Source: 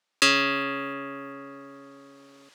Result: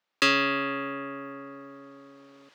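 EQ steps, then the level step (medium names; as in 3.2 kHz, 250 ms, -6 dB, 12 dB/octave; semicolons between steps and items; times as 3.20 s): peaking EQ 10 kHz -13.5 dB 1.5 oct; 0.0 dB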